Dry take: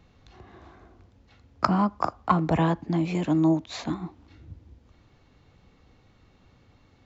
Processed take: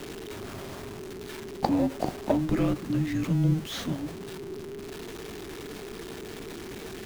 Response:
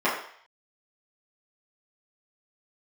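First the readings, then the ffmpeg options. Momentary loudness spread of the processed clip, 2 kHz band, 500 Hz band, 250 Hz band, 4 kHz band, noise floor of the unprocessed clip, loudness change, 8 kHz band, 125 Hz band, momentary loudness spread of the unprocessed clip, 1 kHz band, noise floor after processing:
14 LU, -1.5 dB, +0.5 dB, -1.5 dB, +3.0 dB, -60 dBFS, -6.0 dB, n/a, 0.0 dB, 11 LU, -7.5 dB, -40 dBFS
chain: -af "aeval=exprs='val(0)+0.5*0.0299*sgn(val(0))':c=same,afreqshift=-470,volume=-3.5dB"

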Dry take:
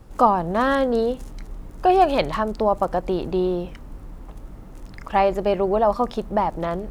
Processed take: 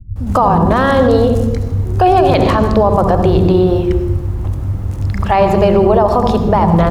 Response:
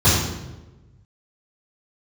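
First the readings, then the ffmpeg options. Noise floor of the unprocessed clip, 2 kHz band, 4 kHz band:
-41 dBFS, +7.5 dB, +8.0 dB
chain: -filter_complex "[0:a]acrossover=split=200[a][b];[b]adelay=160[c];[a][c]amix=inputs=2:normalize=0,asplit=2[d][e];[1:a]atrim=start_sample=2205,lowshelf=f=230:g=10.5,adelay=62[f];[e][f]afir=irnorm=-1:irlink=0,volume=-30.5dB[g];[d][g]amix=inputs=2:normalize=0,alimiter=level_in=12dB:limit=-1dB:release=50:level=0:latency=1,volume=-1dB"

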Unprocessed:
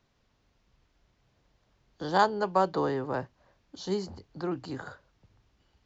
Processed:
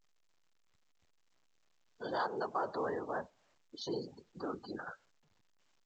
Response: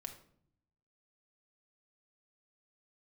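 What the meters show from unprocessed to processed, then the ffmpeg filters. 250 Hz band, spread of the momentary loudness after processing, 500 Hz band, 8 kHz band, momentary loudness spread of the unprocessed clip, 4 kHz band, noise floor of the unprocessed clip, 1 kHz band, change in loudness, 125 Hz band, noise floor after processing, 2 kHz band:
-10.0 dB, 14 LU, -8.5 dB, n/a, 16 LU, -7.5 dB, -72 dBFS, -10.0 dB, -9.5 dB, -14.0 dB, -72 dBFS, -7.5 dB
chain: -filter_complex "[0:a]asplit=2[a][b];[b]acompressor=threshold=-35dB:ratio=16,volume=0dB[c];[a][c]amix=inputs=2:normalize=0,asplit=2[d][e];[e]adelay=100,highpass=300,lowpass=3.4k,asoftclip=type=hard:threshold=-20dB,volume=-22dB[f];[d][f]amix=inputs=2:normalize=0,flanger=delay=4.7:depth=3.9:regen=-56:speed=1:shape=triangular,afftfilt=real='hypot(re,im)*cos(2*PI*random(0))':imag='hypot(re,im)*sin(2*PI*random(1))':win_size=512:overlap=0.75,afftdn=nr=28:nf=-47,alimiter=level_in=6dB:limit=-24dB:level=0:latency=1:release=11,volume=-6dB,highpass=f=520:p=1,volume=5.5dB" -ar 16000 -c:a pcm_alaw

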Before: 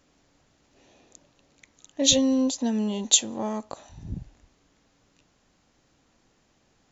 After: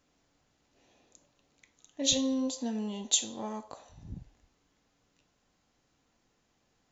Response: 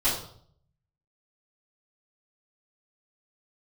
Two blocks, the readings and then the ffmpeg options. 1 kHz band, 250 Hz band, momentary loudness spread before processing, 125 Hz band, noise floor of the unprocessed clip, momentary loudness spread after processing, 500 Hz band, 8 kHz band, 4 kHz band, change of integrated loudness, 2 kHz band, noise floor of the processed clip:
-6.5 dB, -8.0 dB, 19 LU, -8.5 dB, -67 dBFS, 21 LU, -8.5 dB, n/a, -7.0 dB, -7.5 dB, -7.5 dB, -74 dBFS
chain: -filter_complex "[0:a]asplit=2[a][b];[b]highpass=f=450:w=0.5412,highpass=f=450:w=1.3066[c];[1:a]atrim=start_sample=2205[d];[c][d]afir=irnorm=-1:irlink=0,volume=-18dB[e];[a][e]amix=inputs=2:normalize=0,volume=-8.5dB"

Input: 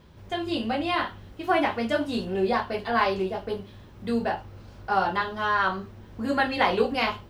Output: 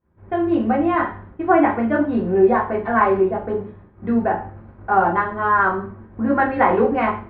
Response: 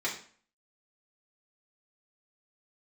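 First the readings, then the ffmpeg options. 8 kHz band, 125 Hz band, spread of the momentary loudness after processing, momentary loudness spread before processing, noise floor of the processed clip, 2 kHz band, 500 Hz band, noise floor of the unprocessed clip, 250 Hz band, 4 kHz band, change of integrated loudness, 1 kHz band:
n/a, +7.0 dB, 11 LU, 12 LU, -47 dBFS, +4.0 dB, +8.0 dB, -48 dBFS, +9.5 dB, under -10 dB, +7.5 dB, +7.5 dB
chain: -filter_complex "[0:a]agate=range=-33dB:threshold=-40dB:ratio=3:detection=peak,lowpass=f=1.7k:w=0.5412,lowpass=f=1.7k:w=1.3066,asplit=2[a][b];[b]aemphasis=mode=production:type=75kf[c];[1:a]atrim=start_sample=2205,lowshelf=f=430:g=8[d];[c][d]afir=irnorm=-1:irlink=0,volume=-11dB[e];[a][e]amix=inputs=2:normalize=0,volume=4dB"

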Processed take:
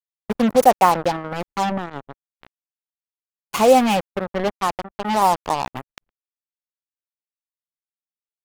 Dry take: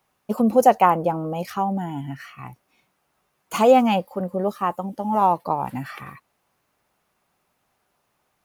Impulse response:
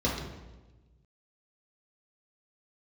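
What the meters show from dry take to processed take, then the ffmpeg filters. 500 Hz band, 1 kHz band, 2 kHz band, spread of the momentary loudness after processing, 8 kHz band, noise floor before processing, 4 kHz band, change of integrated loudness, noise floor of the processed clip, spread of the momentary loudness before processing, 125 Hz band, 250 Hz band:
+1.0 dB, +1.5 dB, +4.5 dB, 16 LU, +7.5 dB, -72 dBFS, +7.0 dB, +1.5 dB, under -85 dBFS, 17 LU, -2.0 dB, 0.0 dB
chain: -af "lowshelf=f=130:g=-5,acrusher=bits=3:mix=0:aa=0.5,anlmdn=0.631,volume=1.5dB"

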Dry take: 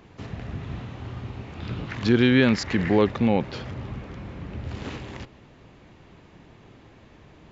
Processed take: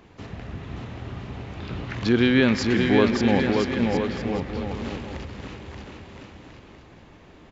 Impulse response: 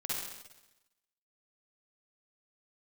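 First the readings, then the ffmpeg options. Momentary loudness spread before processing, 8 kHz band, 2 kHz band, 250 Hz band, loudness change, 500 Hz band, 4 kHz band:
18 LU, n/a, +2.5 dB, +1.5 dB, +2.5 dB, +2.0 dB, +2.5 dB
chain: -filter_complex "[0:a]equalizer=f=130:w=1.8:g=-4,aecho=1:1:580|1015|1341|1586|1769:0.631|0.398|0.251|0.158|0.1,asplit=2[a][b];[1:a]atrim=start_sample=2205,adelay=118[c];[b][c]afir=irnorm=-1:irlink=0,volume=-18.5dB[d];[a][d]amix=inputs=2:normalize=0"

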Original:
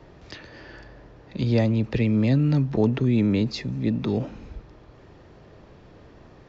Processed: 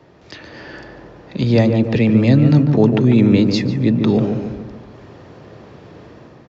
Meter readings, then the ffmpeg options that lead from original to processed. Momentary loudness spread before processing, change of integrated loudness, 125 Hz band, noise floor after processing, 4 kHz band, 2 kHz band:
20 LU, +8.5 dB, +7.5 dB, -45 dBFS, +8.5 dB, +8.5 dB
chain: -filter_complex "[0:a]highpass=100,dynaudnorm=f=120:g=7:m=7.5dB,asplit=2[a][b];[b]adelay=146,lowpass=f=1.2k:p=1,volume=-5dB,asplit=2[c][d];[d]adelay=146,lowpass=f=1.2k:p=1,volume=0.51,asplit=2[e][f];[f]adelay=146,lowpass=f=1.2k:p=1,volume=0.51,asplit=2[g][h];[h]adelay=146,lowpass=f=1.2k:p=1,volume=0.51,asplit=2[i][j];[j]adelay=146,lowpass=f=1.2k:p=1,volume=0.51,asplit=2[k][l];[l]adelay=146,lowpass=f=1.2k:p=1,volume=0.51[m];[c][e][g][i][k][m]amix=inputs=6:normalize=0[n];[a][n]amix=inputs=2:normalize=0,volume=1.5dB"

